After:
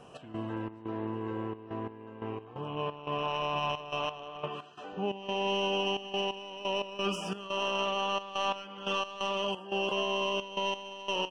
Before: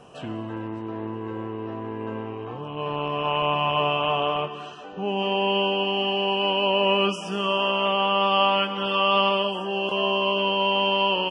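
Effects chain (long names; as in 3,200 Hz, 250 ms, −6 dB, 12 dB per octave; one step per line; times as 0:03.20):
stylus tracing distortion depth 0.034 ms
brickwall limiter −18.5 dBFS, peak gain reduction 9 dB
gate pattern "x.xx.xxxx.x.." 88 BPM −12 dB
level −3.5 dB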